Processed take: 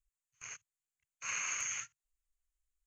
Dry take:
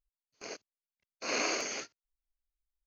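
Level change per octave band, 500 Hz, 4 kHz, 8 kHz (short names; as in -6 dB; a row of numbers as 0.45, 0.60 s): -26.0, -9.5, +1.5 dB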